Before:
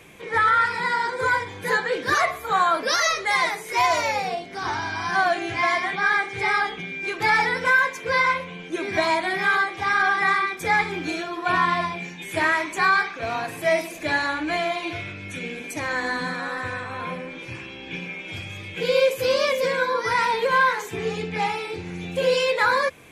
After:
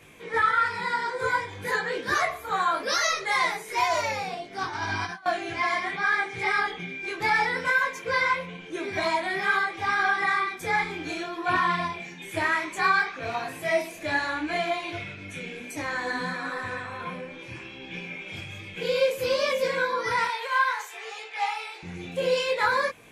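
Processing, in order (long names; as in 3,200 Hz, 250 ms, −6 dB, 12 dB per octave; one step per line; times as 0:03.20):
0:04.58–0:05.26: compressor whose output falls as the input rises −29 dBFS, ratio −0.5
0:20.27–0:21.83: high-pass filter 650 Hz 24 dB per octave
micro pitch shift up and down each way 21 cents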